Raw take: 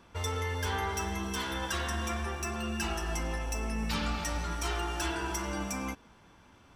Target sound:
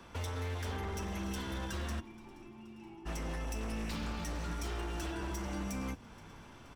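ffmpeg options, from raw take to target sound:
-filter_complex "[0:a]acrossover=split=140|340[s0][s1][s2];[s0]acompressor=threshold=0.00794:ratio=4[s3];[s1]acompressor=threshold=0.00631:ratio=4[s4];[s2]acompressor=threshold=0.00398:ratio=4[s5];[s3][s4][s5]amix=inputs=3:normalize=0,asplit=3[s6][s7][s8];[s6]afade=t=out:st=1.99:d=0.02[s9];[s7]asplit=3[s10][s11][s12];[s10]bandpass=f=300:t=q:w=8,volume=1[s13];[s11]bandpass=f=870:t=q:w=8,volume=0.501[s14];[s12]bandpass=f=2240:t=q:w=8,volume=0.355[s15];[s13][s14][s15]amix=inputs=3:normalize=0,afade=t=in:st=1.99:d=0.02,afade=t=out:st=3.05:d=0.02[s16];[s8]afade=t=in:st=3.05:d=0.02[s17];[s9][s16][s17]amix=inputs=3:normalize=0,aeval=exprs='0.015*(abs(mod(val(0)/0.015+3,4)-2)-1)':c=same,asplit=6[s18][s19][s20][s21][s22][s23];[s19]adelay=475,afreqshift=-99,volume=0.0841[s24];[s20]adelay=950,afreqshift=-198,volume=0.0531[s25];[s21]adelay=1425,afreqshift=-297,volume=0.0335[s26];[s22]adelay=1900,afreqshift=-396,volume=0.0211[s27];[s23]adelay=2375,afreqshift=-495,volume=0.0132[s28];[s18][s24][s25][s26][s27][s28]amix=inputs=6:normalize=0,volume=1.58"

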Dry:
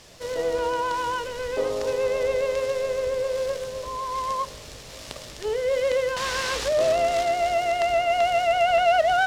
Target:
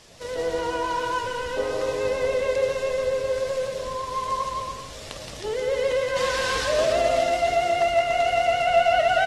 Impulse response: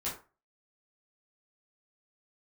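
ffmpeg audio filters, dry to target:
-filter_complex "[0:a]aecho=1:1:170|289|372.3|430.6|471.4:0.631|0.398|0.251|0.158|0.1,asplit=2[s0][s1];[1:a]atrim=start_sample=2205[s2];[s1][s2]afir=irnorm=-1:irlink=0,volume=0.0944[s3];[s0][s3]amix=inputs=2:normalize=0,volume=0.75" -ar 44100 -c:a aac -b:a 32k

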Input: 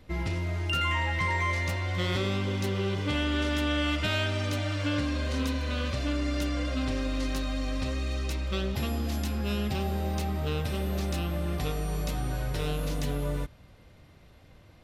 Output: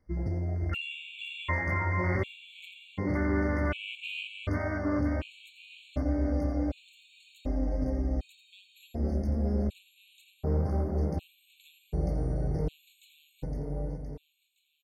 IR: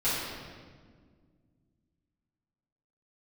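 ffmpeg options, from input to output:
-filter_complex "[0:a]afwtdn=0.0251,asettb=1/sr,asplit=3[s0][s1][s2];[s0]atrim=end=6.144[s3];[s1]atrim=start=6.14:end=6.7,asetpts=PTS-STARTPTS,afade=t=in:d=0.004:c=qsin,afade=t=out:st=0.556:d=0.004:c=qsin,aeval=exprs='sgn(val(0))*max(abs(val(0))-0.00106,0)':c=same[s4];[s2]atrim=start=6.696[s5];[s3][s4]acrossfade=d=0.004:c1=hsin:c2=qsin[s6];[s6][s5]acrossfade=d=0.004:c1=qsin:c2=hsin,aecho=1:1:515|1030|1545|2060|2575|3090|3605:0.562|0.315|0.176|0.0988|0.0553|0.031|0.0173,afftfilt=real='re*gt(sin(2*PI*0.67*pts/sr)*(1-2*mod(floor(b*sr/1024/2200),2)),0)':imag='im*gt(sin(2*PI*0.67*pts/sr)*(1-2*mod(floor(b*sr/1024/2200),2)),0)':win_size=1024:overlap=0.75"

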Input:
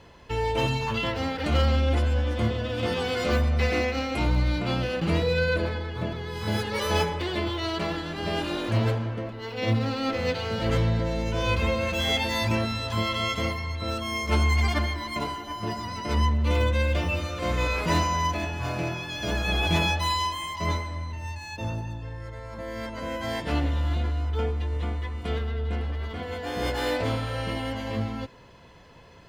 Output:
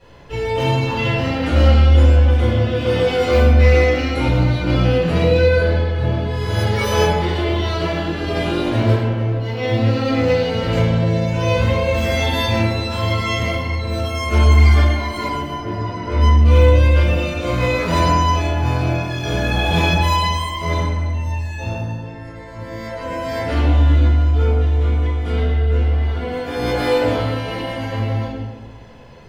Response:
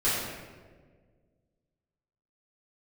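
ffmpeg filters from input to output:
-filter_complex "[0:a]asettb=1/sr,asplit=3[s0][s1][s2];[s0]atrim=end=15.534[s3];[s1]atrim=start=15.53:end=16.21,asetpts=PTS-STARTPTS,afade=t=in:d=0.004:c=qsin,afade=t=out:st=0.676:d=0.004:c=qsin,aemphasis=mode=reproduction:type=75kf[s4];[s2]atrim=start=16.206[s5];[s3][s4]acrossfade=d=0.004:c1=hsin:c2=qsin[s6];[s6][s5]acrossfade=d=0.004:c1=qsin:c2=hsin[s7];[1:a]atrim=start_sample=2205,asetrate=52920,aresample=44100[s8];[s7][s8]afir=irnorm=-1:irlink=0,volume=0.631"

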